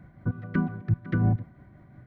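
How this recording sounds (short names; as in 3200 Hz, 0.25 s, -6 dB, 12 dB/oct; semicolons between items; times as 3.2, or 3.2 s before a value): tremolo triangle 5.7 Hz, depth 45%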